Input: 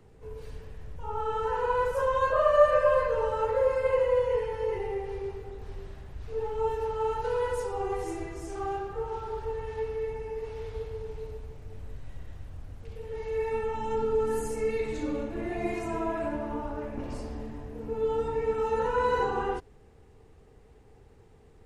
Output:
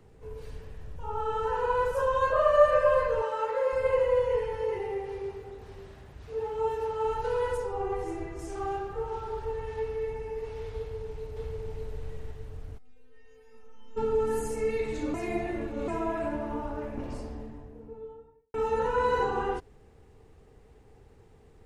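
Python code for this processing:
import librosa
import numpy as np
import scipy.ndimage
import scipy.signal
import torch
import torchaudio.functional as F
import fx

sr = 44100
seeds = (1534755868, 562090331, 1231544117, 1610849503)

y = fx.notch(x, sr, hz=2100.0, q=12.0, at=(0.8, 2.22))
y = fx.weighting(y, sr, curve='A', at=(3.22, 3.73))
y = fx.highpass(y, sr, hz=110.0, slope=6, at=(4.61, 7.05))
y = fx.high_shelf(y, sr, hz=3600.0, db=-9.5, at=(7.57, 8.39))
y = fx.echo_throw(y, sr, start_s=10.77, length_s=0.95, ms=590, feedback_pct=35, wet_db=-1.0)
y = fx.stiff_resonator(y, sr, f0_hz=250.0, decay_s=0.52, stiffness=0.002, at=(12.77, 13.96), fade=0.02)
y = fx.studio_fade_out(y, sr, start_s=16.85, length_s=1.69)
y = fx.edit(y, sr, fx.reverse_span(start_s=15.14, length_s=0.74), tone=tone)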